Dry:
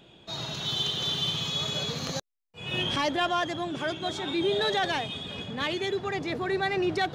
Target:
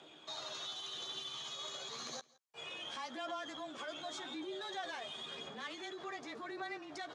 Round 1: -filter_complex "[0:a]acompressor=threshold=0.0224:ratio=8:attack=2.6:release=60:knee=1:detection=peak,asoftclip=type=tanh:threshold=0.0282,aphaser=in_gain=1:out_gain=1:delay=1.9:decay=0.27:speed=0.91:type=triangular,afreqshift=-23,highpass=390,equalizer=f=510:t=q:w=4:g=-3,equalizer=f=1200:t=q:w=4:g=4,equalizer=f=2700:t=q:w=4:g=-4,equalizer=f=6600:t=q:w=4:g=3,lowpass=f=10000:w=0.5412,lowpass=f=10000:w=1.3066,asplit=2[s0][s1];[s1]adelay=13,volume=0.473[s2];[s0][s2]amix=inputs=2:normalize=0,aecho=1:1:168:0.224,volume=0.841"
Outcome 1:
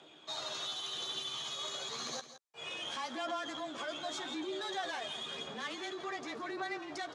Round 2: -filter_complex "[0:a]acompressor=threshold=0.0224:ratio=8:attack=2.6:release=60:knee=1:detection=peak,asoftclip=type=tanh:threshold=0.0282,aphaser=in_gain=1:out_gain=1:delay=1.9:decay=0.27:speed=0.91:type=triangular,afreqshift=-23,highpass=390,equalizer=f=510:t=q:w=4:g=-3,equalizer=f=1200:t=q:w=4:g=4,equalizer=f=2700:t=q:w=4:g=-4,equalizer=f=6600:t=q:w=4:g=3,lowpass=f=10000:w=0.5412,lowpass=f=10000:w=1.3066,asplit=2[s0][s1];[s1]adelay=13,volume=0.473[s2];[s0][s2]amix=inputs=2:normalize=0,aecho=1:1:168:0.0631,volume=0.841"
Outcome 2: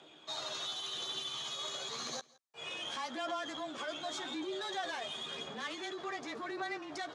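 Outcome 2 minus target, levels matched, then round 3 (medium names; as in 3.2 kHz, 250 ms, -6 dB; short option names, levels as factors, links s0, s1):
compression: peak gain reduction -5.5 dB
-filter_complex "[0:a]acompressor=threshold=0.0112:ratio=8:attack=2.6:release=60:knee=1:detection=peak,asoftclip=type=tanh:threshold=0.0282,aphaser=in_gain=1:out_gain=1:delay=1.9:decay=0.27:speed=0.91:type=triangular,afreqshift=-23,highpass=390,equalizer=f=510:t=q:w=4:g=-3,equalizer=f=1200:t=q:w=4:g=4,equalizer=f=2700:t=q:w=4:g=-4,equalizer=f=6600:t=q:w=4:g=3,lowpass=f=10000:w=0.5412,lowpass=f=10000:w=1.3066,asplit=2[s0][s1];[s1]adelay=13,volume=0.473[s2];[s0][s2]amix=inputs=2:normalize=0,aecho=1:1:168:0.0631,volume=0.841"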